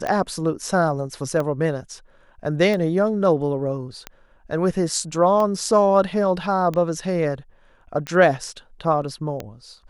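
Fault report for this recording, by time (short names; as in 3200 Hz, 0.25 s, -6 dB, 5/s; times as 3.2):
tick 45 rpm -14 dBFS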